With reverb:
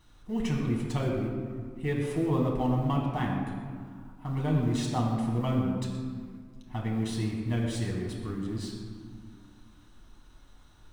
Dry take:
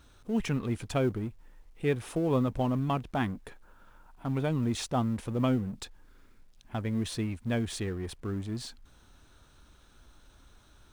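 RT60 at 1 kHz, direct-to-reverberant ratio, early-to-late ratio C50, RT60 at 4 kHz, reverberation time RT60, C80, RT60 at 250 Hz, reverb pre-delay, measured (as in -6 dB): 1.8 s, -2.5 dB, 2.5 dB, 1.0 s, 1.8 s, 3.5 dB, 2.8 s, 7 ms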